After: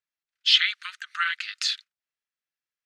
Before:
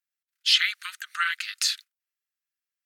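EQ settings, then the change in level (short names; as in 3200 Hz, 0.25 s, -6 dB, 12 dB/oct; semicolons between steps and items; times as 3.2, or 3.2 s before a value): LPF 5100 Hz 12 dB/oct; dynamic EQ 3400 Hz, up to +5 dB, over -36 dBFS, Q 4.2; 0.0 dB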